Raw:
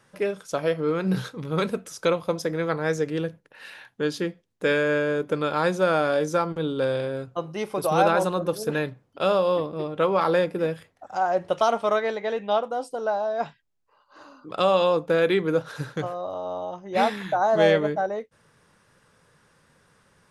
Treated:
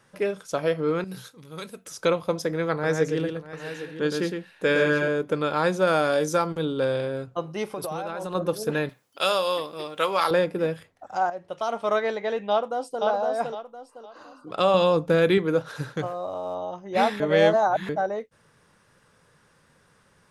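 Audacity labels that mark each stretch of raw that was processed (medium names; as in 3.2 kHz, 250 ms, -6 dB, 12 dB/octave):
1.040000	1.860000	pre-emphasis filter coefficient 0.8
2.720000	5.080000	multi-tap echo 114/642/811 ms -5/-16/-12 dB
5.870000	6.650000	treble shelf 4.7 kHz +8 dB
7.640000	8.350000	compression 16:1, threshold -27 dBFS
8.890000	10.310000	tilt EQ +4.5 dB/octave
11.300000	11.970000	fade in quadratic, from -12.5 dB
12.500000	13.030000	echo throw 510 ms, feedback 30%, level -3 dB
14.740000	15.380000	tone controls bass +8 dB, treble +3 dB
16.020000	16.550000	median filter over 9 samples
17.200000	17.890000	reverse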